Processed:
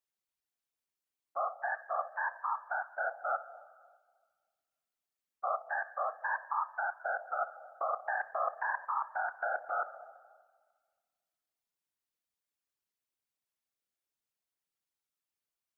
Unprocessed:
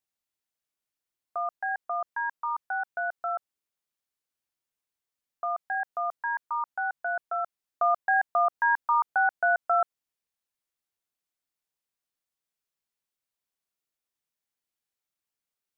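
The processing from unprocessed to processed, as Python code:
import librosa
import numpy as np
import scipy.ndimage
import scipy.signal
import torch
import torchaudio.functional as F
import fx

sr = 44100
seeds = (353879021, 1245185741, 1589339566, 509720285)

y = fx.level_steps(x, sr, step_db=15)
y = fx.rev_spring(y, sr, rt60_s=1.6, pass_ms=(30, 59), chirp_ms=55, drr_db=12.0)
y = fx.whisperise(y, sr, seeds[0])
y = F.gain(torch.from_numpy(y), -3.0).numpy()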